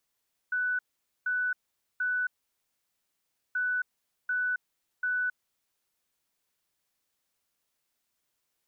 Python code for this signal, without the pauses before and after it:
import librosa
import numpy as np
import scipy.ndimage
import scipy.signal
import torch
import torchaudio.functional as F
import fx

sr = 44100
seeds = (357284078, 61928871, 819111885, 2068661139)

y = fx.beep_pattern(sr, wave='sine', hz=1490.0, on_s=0.27, off_s=0.47, beeps=3, pause_s=1.28, groups=2, level_db=-26.0)